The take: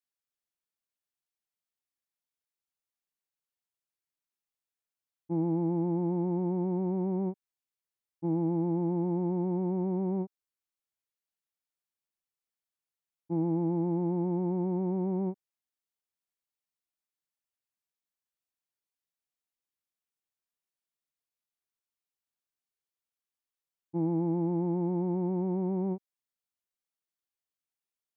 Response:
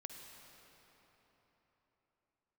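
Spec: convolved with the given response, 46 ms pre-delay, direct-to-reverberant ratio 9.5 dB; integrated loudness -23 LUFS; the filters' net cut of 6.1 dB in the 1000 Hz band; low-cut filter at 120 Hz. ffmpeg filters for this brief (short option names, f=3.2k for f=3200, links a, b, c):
-filter_complex "[0:a]highpass=120,equalizer=f=1k:t=o:g=-8,asplit=2[a][b];[1:a]atrim=start_sample=2205,adelay=46[c];[b][c]afir=irnorm=-1:irlink=0,volume=-5.5dB[d];[a][d]amix=inputs=2:normalize=0,volume=8.5dB"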